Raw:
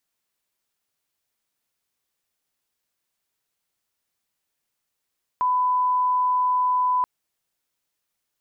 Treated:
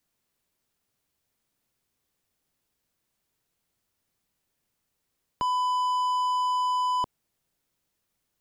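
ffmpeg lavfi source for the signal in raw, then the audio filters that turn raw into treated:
-f lavfi -i "sine=frequency=1000:duration=1.63:sample_rate=44100,volume=0.06dB"
-filter_complex "[0:a]lowshelf=frequency=430:gain=10.5,acrossover=split=590|660[link_01][link_02][link_03];[link_03]asoftclip=type=hard:threshold=-31dB[link_04];[link_01][link_02][link_04]amix=inputs=3:normalize=0"

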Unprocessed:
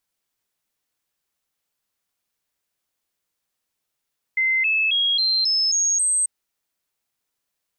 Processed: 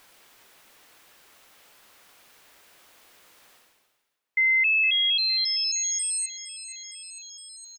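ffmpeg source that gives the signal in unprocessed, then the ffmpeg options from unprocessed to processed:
-f lavfi -i "aevalsrc='0.141*clip(min(mod(t,0.27),0.27-mod(t,0.27))/0.005,0,1)*sin(2*PI*2070*pow(2,floor(t/0.27)/3)*mod(t,0.27))':duration=1.89:sample_rate=44100"
-af "aecho=1:1:462|924|1386|1848|2310:0.158|0.0808|0.0412|0.021|0.0107,areverse,acompressor=mode=upward:threshold=-27dB:ratio=2.5,areverse,bass=frequency=250:gain=-9,treble=frequency=4000:gain=-8"

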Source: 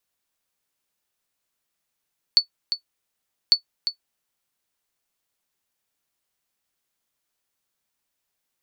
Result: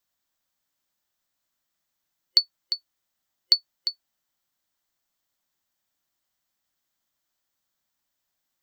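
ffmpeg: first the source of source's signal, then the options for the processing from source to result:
-f lavfi -i "aevalsrc='0.531*(sin(2*PI*4460*mod(t,1.15))*exp(-6.91*mod(t,1.15)/0.1)+0.335*sin(2*PI*4460*max(mod(t,1.15)-0.35,0))*exp(-6.91*max(mod(t,1.15)-0.35,0)/0.1))':duration=2.3:sample_rate=44100"
-af "superequalizer=7b=0.501:12b=0.631:16b=0.447"

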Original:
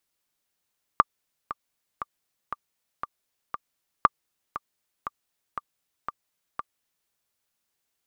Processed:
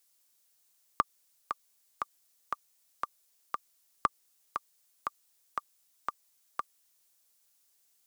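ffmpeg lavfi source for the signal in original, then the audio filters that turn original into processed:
-f lavfi -i "aevalsrc='pow(10,(-2.5-15*gte(mod(t,6*60/118),60/118))/20)*sin(2*PI*1180*mod(t,60/118))*exp(-6.91*mod(t,60/118)/0.03)':duration=6.1:sample_rate=44100"
-filter_complex "[0:a]bass=frequency=250:gain=-7,treble=frequency=4000:gain=11,acrossover=split=330[link_01][link_02];[link_02]alimiter=limit=-11dB:level=0:latency=1:release=77[link_03];[link_01][link_03]amix=inputs=2:normalize=0"

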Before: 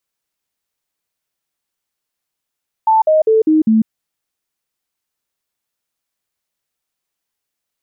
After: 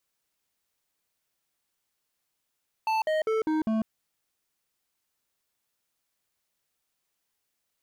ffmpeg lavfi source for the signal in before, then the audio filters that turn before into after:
-f lavfi -i "aevalsrc='0.398*clip(min(mod(t,0.2),0.15-mod(t,0.2))/0.005,0,1)*sin(2*PI*882*pow(2,-floor(t/0.2)/2)*mod(t,0.2))':duration=1:sample_rate=44100"
-af "alimiter=limit=-16dB:level=0:latency=1:release=24,asoftclip=type=hard:threshold=-25dB"

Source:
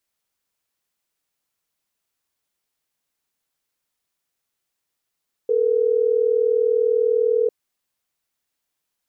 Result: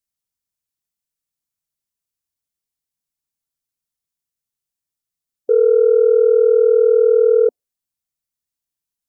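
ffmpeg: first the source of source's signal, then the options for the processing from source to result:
-f lavfi -i "aevalsrc='0.119*(sin(2*PI*440*t)+sin(2*PI*480*t))*clip(min(mod(t,6),2-mod(t,6))/0.005,0,1)':duration=3.12:sample_rate=44100"
-af "afftdn=noise_reduction=19:noise_floor=-35,bass=frequency=250:gain=11,treble=frequency=4000:gain=8,acontrast=48"

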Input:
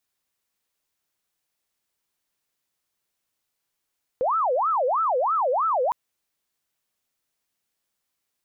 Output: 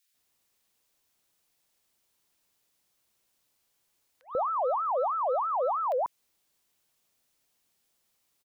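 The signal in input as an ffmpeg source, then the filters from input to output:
-f lavfi -i "aevalsrc='0.106*sin(2*PI*(911*t-419/(2*PI*3.1)*sin(2*PI*3.1*t)))':duration=1.71:sample_rate=44100"
-filter_complex "[0:a]acontrast=36,alimiter=limit=-24dB:level=0:latency=1:release=155,acrossover=split=1600[link_01][link_02];[link_01]adelay=140[link_03];[link_03][link_02]amix=inputs=2:normalize=0"

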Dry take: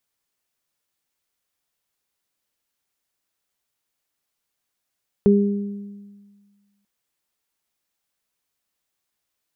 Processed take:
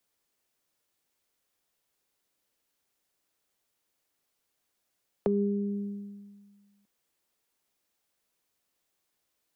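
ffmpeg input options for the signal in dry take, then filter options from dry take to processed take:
-f lavfi -i "aevalsrc='0.266*pow(10,-3*t/1.64)*sin(2*PI*202*t)+0.224*pow(10,-3*t/0.99)*sin(2*PI*404*t)':duration=1.59:sample_rate=44100"
-filter_complex "[0:a]acrossover=split=100|280|590[link_01][link_02][link_03][link_04];[link_03]acontrast=46[link_05];[link_01][link_02][link_05][link_04]amix=inputs=4:normalize=0,alimiter=limit=-11dB:level=0:latency=1,acompressor=threshold=-29dB:ratio=2.5"

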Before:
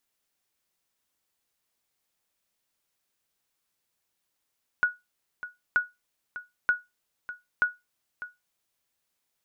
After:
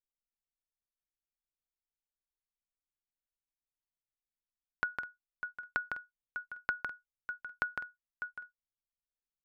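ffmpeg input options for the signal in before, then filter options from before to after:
-f lavfi -i "aevalsrc='0.188*(sin(2*PI*1460*mod(t,0.93))*exp(-6.91*mod(t,0.93)/0.2)+0.188*sin(2*PI*1460*max(mod(t,0.93)-0.6,0))*exp(-6.91*max(mod(t,0.93)-0.6,0)/0.2))':duration=3.72:sample_rate=44100"
-af "anlmdn=0.00631,acompressor=threshold=-31dB:ratio=6,aecho=1:1:156|204:0.531|0.126"

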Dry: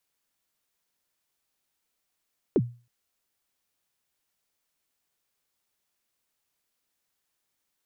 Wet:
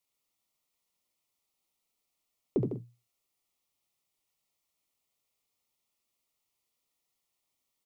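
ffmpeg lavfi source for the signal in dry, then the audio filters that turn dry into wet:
-f lavfi -i "aevalsrc='0.178*pow(10,-3*t/0.34)*sin(2*PI*(470*0.046/log(120/470)*(exp(log(120/470)*min(t,0.046)/0.046)-1)+120*max(t-0.046,0)))':duration=0.32:sample_rate=44100"
-filter_complex "[0:a]flanger=delay=7.1:depth=2.6:regen=-70:speed=1.6:shape=triangular,asuperstop=centerf=1600:order=4:qfactor=3,asplit=2[link_01][link_02];[link_02]aecho=0:1:71|90|153|197:0.596|0.126|0.355|0.106[link_03];[link_01][link_03]amix=inputs=2:normalize=0"

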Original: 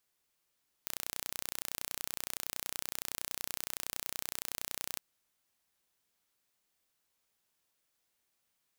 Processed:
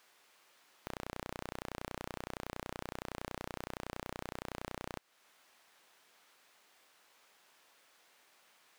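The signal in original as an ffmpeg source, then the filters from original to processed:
-f lavfi -i "aevalsrc='0.335*eq(mod(n,1436),0)':duration=4.11:sample_rate=44100"
-filter_complex "[0:a]lowshelf=frequency=120:gain=-8.5,acompressor=threshold=-49dB:ratio=2,asplit=2[link_01][link_02];[link_02]highpass=frequency=720:poles=1,volume=29dB,asoftclip=type=tanh:threshold=-13.5dB[link_03];[link_01][link_03]amix=inputs=2:normalize=0,lowpass=frequency=1700:poles=1,volume=-6dB"

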